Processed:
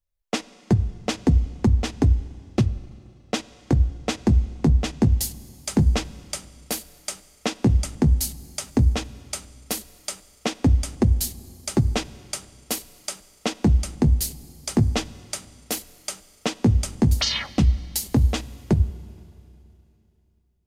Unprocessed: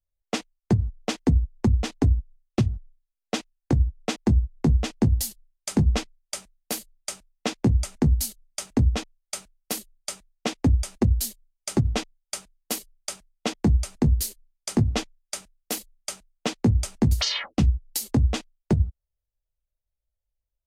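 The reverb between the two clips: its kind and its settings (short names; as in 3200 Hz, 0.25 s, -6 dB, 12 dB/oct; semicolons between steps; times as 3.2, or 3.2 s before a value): Schroeder reverb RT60 2.9 s, combs from 32 ms, DRR 18 dB; gain +2 dB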